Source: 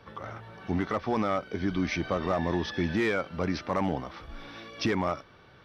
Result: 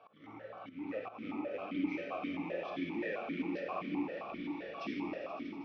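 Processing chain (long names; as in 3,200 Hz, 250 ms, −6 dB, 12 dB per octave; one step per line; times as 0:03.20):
loose part that buzzes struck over −38 dBFS, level −27 dBFS
downward compressor 2 to 1, threshold −39 dBFS, peak gain reduction 9 dB
soft clipping −25.5 dBFS, distortion −22 dB
rectangular room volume 200 cubic metres, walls hard, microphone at 0.58 metres
volume swells 213 ms
on a send: echo that builds up and dies away 80 ms, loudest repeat 8, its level −17 dB
on the sum: formant filter that steps through the vowels 7.6 Hz
level +5 dB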